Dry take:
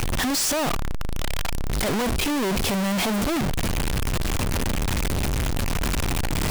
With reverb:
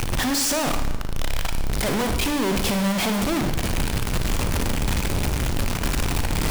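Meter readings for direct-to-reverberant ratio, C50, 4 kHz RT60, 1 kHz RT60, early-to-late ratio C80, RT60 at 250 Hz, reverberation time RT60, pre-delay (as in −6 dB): 6.5 dB, 8.0 dB, 0.95 s, 0.95 s, 9.5 dB, 0.95 s, 0.95 s, 38 ms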